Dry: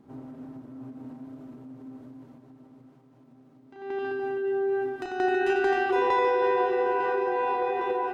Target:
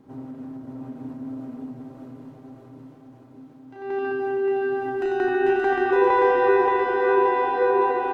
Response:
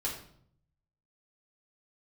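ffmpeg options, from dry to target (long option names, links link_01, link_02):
-filter_complex "[0:a]acrossover=split=2600[link_01][link_02];[link_02]acompressor=threshold=-54dB:ratio=4:attack=1:release=60[link_03];[link_01][link_03]amix=inputs=2:normalize=0,aecho=1:1:576|1152|1728|2304|2880|3456|4032:0.708|0.382|0.206|0.111|0.0602|0.0325|0.0176,asplit=2[link_04][link_05];[1:a]atrim=start_sample=2205[link_06];[link_05][link_06]afir=irnorm=-1:irlink=0,volume=-9dB[link_07];[link_04][link_07]amix=inputs=2:normalize=0,volume=1dB"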